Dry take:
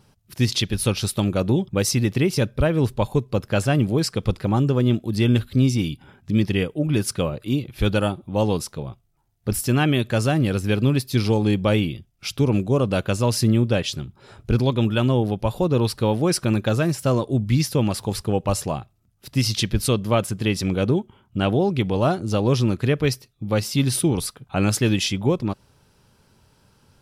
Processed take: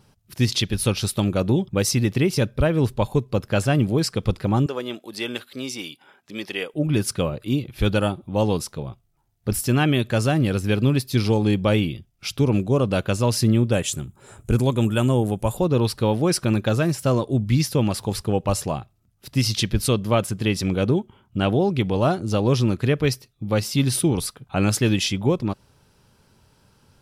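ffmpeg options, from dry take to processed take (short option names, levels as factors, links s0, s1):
-filter_complex "[0:a]asettb=1/sr,asplit=3[s0][s1][s2];[s0]atrim=end=4.664[s3];[s1]atrim=start=4.66:end=6.74,asetpts=PTS-STARTPTS,afade=t=in:d=0.004:c=qsin,afade=t=out:st=2.076:d=0.004:c=qsin,highpass=530[s4];[s2]atrim=start=6.736[s5];[s3][s4]acrossfade=d=0.004:c1=hsin:c2=qsin[s6];[s6][s5]acrossfade=d=0.004:c1=qsin:c2=hsin,asettb=1/sr,asplit=3[s7][s8][s9];[s7]atrim=end=13.724[s10];[s8]atrim=start=13.72:end=15.57,asetpts=PTS-STARTPTS,afade=t=in:d=0.004:c=qsin,afade=t=out:st=1.846:d=0.004:c=qsin,highshelf=f=6100:t=q:w=3:g=8[s11];[s9]atrim=start=15.566[s12];[s10][s11]acrossfade=d=0.004:c1=hsin:c2=qsin[s13];[s13][s12]acrossfade=d=0.004:c1=qsin:c2=hsin"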